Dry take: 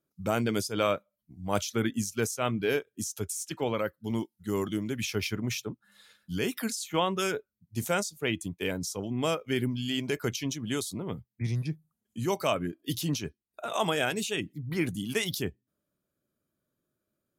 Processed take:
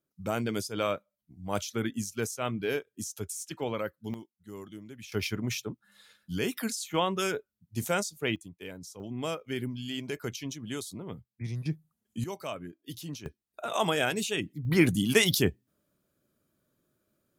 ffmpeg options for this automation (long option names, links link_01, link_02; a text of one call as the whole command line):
ffmpeg -i in.wav -af "asetnsamples=nb_out_samples=441:pad=0,asendcmd='4.14 volume volume -13.5dB;5.12 volume volume -0.5dB;8.36 volume volume -11dB;9 volume volume -5dB;11.66 volume volume 1.5dB;12.24 volume volume -9.5dB;13.26 volume volume 0.5dB;14.65 volume volume 7dB',volume=-3dB" out.wav